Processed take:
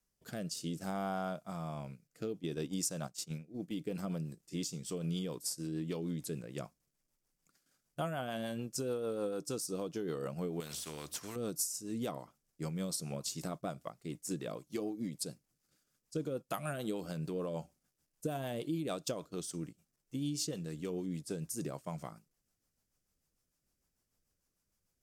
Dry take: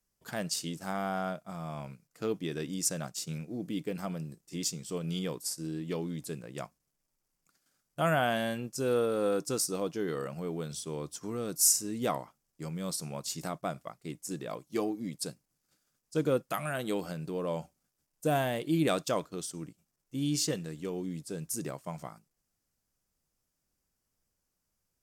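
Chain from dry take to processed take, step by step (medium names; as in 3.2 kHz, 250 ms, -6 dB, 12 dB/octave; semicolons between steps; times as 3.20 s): 2.40–3.82 s: gate -36 dBFS, range -12 dB; dynamic bell 1.9 kHz, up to -6 dB, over -53 dBFS, Q 1.9; compression 12:1, threshold -33 dBFS, peak gain reduction 13.5 dB; rotary cabinet horn 0.6 Hz, later 6.7 Hz, at 3.28 s; 10.60–11.36 s: spectrum-flattening compressor 2:1; trim +1.5 dB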